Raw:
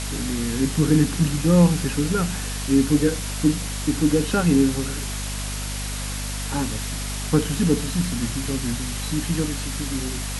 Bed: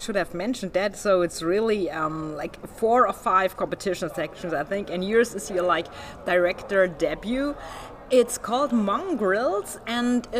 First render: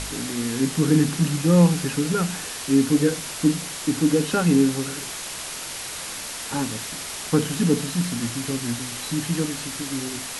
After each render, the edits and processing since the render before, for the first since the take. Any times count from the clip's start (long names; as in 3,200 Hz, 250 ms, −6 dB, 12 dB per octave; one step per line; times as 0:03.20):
hum removal 50 Hz, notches 5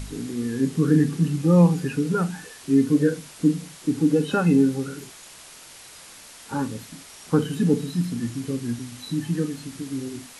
noise reduction from a noise print 12 dB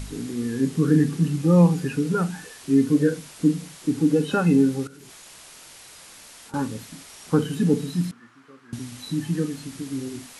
0:04.87–0:06.54: output level in coarse steps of 23 dB
0:08.11–0:08.73: resonant band-pass 1,300 Hz, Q 3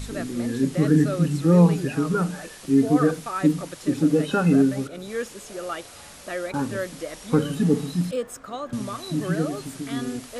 mix in bed −9.5 dB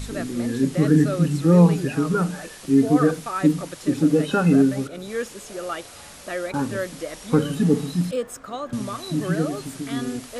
level +1.5 dB